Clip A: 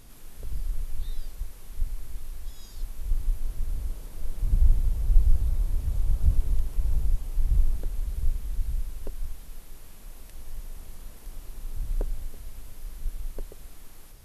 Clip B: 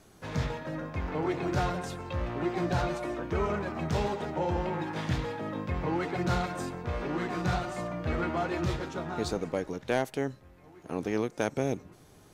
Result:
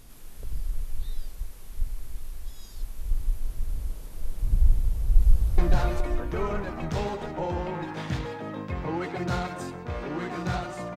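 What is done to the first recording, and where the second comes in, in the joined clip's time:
clip A
0:04.78–0:05.58: delay throw 420 ms, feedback 45%, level −3 dB
0:05.58: continue with clip B from 0:02.57

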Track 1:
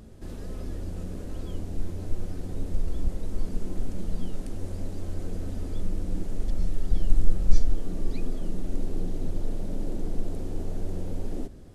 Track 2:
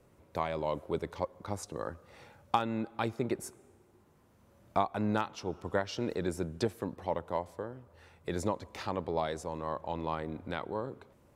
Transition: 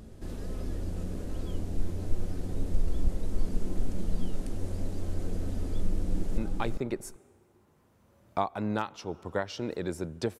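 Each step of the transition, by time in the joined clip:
track 1
0:05.94–0:06.38: delay throw 390 ms, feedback 10%, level −4 dB
0:06.38: continue with track 2 from 0:02.77

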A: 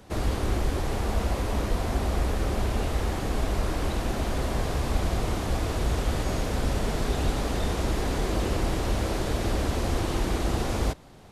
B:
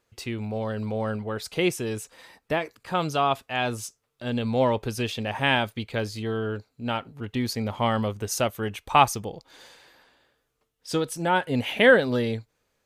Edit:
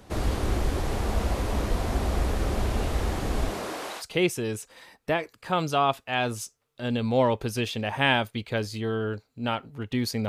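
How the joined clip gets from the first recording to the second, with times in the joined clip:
A
0:03.49–0:04.04: high-pass filter 160 Hz → 990 Hz
0:04.01: continue with B from 0:01.43, crossfade 0.06 s

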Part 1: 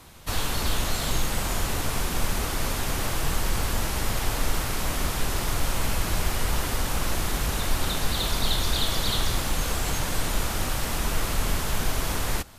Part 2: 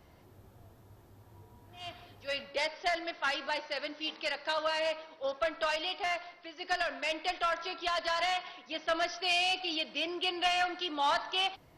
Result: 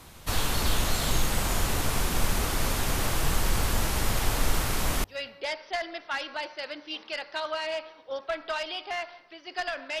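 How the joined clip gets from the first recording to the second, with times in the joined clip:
part 1
0:05.04: continue with part 2 from 0:02.17

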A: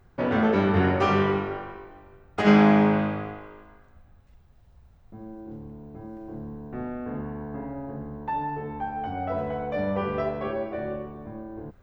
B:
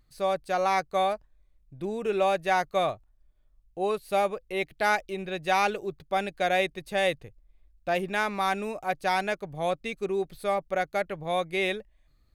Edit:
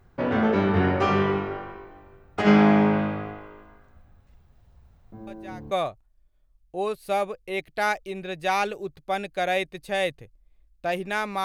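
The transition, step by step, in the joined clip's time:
A
0:05.27: mix in B from 0:02.30 0.44 s −17.5 dB
0:05.71: continue with B from 0:02.74

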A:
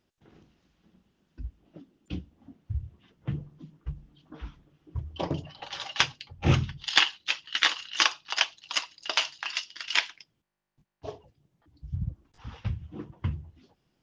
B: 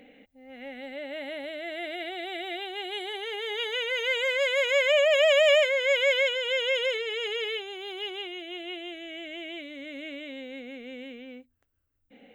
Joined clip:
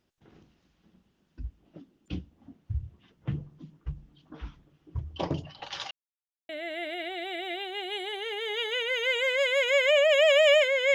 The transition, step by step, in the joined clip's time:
A
0:05.91–0:06.49: silence
0:06.49: continue with B from 0:01.50

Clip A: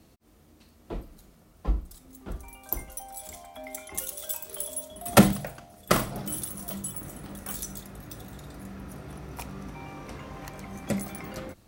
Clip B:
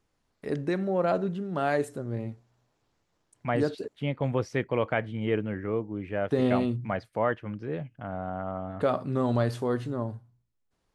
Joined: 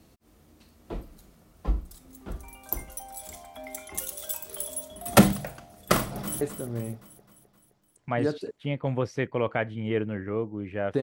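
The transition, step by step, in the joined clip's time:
clip A
0:05.97–0:06.41: delay throw 260 ms, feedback 55%, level −9.5 dB
0:06.41: continue with clip B from 0:01.78

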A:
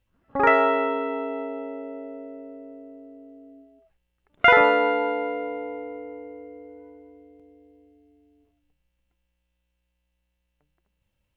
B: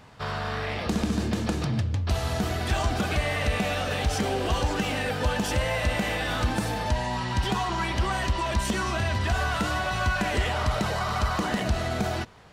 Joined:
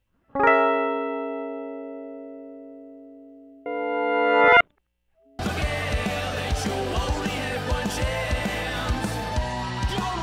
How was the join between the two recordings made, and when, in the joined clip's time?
A
0:03.66–0:05.39: reverse
0:05.39: continue with B from 0:02.93

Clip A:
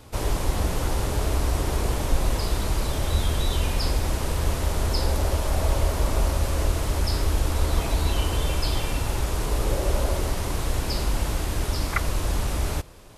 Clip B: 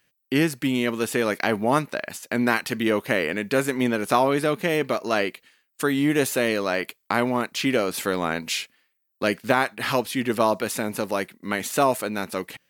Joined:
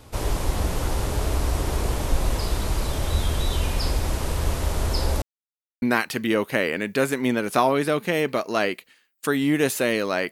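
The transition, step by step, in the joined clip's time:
clip A
0:05.22–0:05.82: silence
0:05.82: continue with clip B from 0:02.38

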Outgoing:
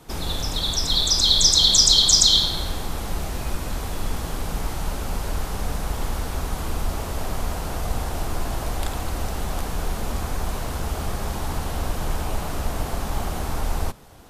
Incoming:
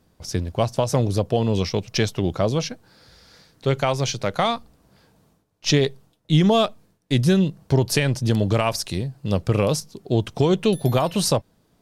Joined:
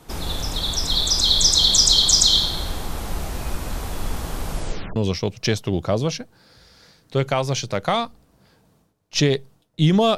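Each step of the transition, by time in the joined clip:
outgoing
0:04.50: tape stop 0.46 s
0:04.96: continue with incoming from 0:01.47

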